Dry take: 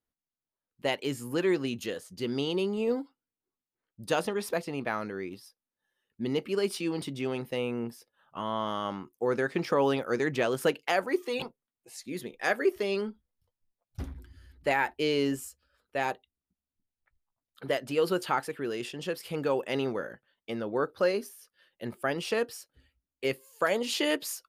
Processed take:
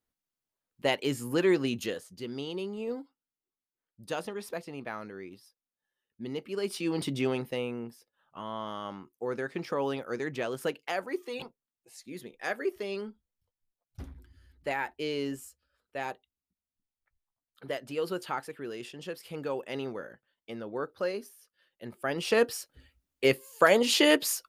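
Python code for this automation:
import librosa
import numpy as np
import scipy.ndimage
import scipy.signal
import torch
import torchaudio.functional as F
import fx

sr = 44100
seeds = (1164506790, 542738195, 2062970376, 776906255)

y = fx.gain(x, sr, db=fx.line((1.84, 2.0), (2.27, -6.5), (6.47, -6.5), (7.14, 5.0), (7.87, -5.5), (21.91, -5.5), (22.44, 6.0)))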